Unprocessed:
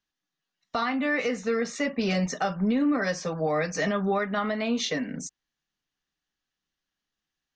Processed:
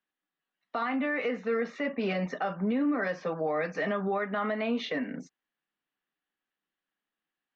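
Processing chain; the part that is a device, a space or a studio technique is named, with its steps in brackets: low-pass 5.8 kHz; DJ mixer with the lows and highs turned down (three-band isolator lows -18 dB, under 190 Hz, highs -24 dB, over 3.3 kHz; peak limiter -21.5 dBFS, peak gain reduction 5 dB)

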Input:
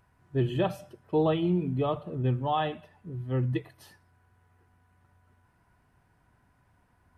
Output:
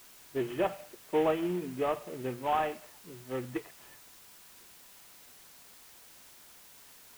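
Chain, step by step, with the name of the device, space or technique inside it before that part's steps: army field radio (band-pass 340–2900 Hz; CVSD coder 16 kbps; white noise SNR 19 dB)

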